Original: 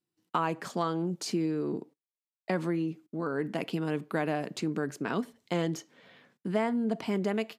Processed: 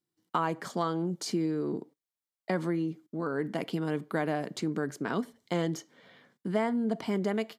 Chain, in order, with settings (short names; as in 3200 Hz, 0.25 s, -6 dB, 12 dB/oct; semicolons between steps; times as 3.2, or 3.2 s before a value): notch 2600 Hz, Q 6.9